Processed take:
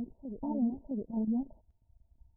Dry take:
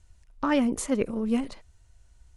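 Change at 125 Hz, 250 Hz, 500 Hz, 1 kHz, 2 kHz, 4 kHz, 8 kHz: −4.5 dB, −5.5 dB, −14.5 dB, −13.5 dB, below −40 dB, below −35 dB, below −40 dB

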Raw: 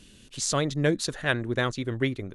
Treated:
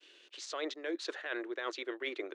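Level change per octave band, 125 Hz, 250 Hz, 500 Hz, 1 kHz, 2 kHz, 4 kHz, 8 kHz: below −40 dB, −13.0 dB, −10.0 dB, −10.5 dB, −10.0 dB, −9.5 dB, −18.5 dB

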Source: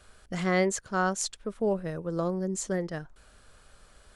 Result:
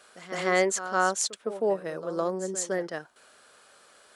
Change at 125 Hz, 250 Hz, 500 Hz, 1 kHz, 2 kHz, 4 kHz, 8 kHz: −8.5, −4.0, +2.5, +3.5, +3.5, +3.5, +3.5 decibels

